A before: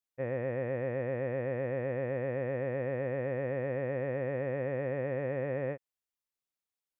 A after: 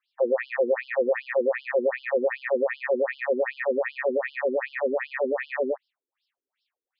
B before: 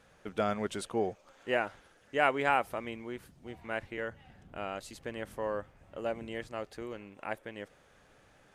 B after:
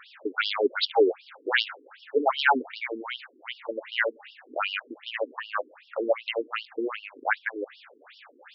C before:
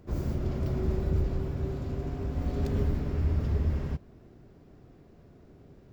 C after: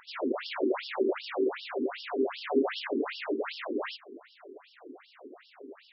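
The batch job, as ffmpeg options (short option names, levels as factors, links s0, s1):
-af "tiltshelf=f=970:g=-5,aeval=exprs='0.299*sin(PI/2*3.98*val(0)/0.299)':c=same,afftfilt=real='re*between(b*sr/1024,310*pow(4000/310,0.5+0.5*sin(2*PI*2.6*pts/sr))/1.41,310*pow(4000/310,0.5+0.5*sin(2*PI*2.6*pts/sr))*1.41)':imag='im*between(b*sr/1024,310*pow(4000/310,0.5+0.5*sin(2*PI*2.6*pts/sr))/1.41,310*pow(4000/310,0.5+0.5*sin(2*PI*2.6*pts/sr))*1.41)':win_size=1024:overlap=0.75,volume=1.26"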